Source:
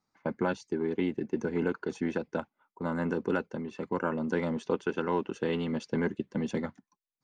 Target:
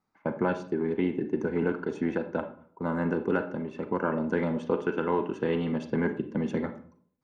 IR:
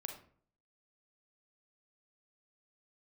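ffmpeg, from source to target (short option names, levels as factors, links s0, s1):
-filter_complex "[0:a]asplit=2[s0][s1];[1:a]atrim=start_sample=2205,lowpass=3100[s2];[s1][s2]afir=irnorm=-1:irlink=0,volume=2[s3];[s0][s3]amix=inputs=2:normalize=0,volume=0.562"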